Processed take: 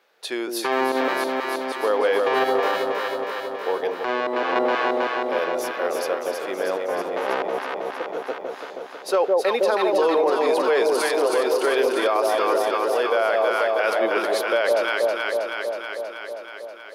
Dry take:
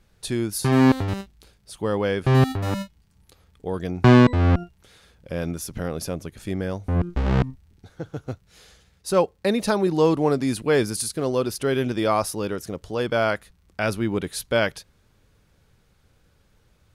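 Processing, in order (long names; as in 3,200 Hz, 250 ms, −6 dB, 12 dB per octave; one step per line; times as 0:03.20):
high-pass filter 440 Hz 24 dB per octave
parametric band 8,800 Hz −13.5 dB 1.4 octaves
on a send: delay that swaps between a low-pass and a high-pass 160 ms, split 850 Hz, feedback 84%, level −3 dB
0:03.85–0:04.56: on the sum: downward compressor 12 to 1, threshold −26 dBFS, peak gain reduction 11 dB
brickwall limiter −18.5 dBFS, peak gain reduction 10 dB
level +7 dB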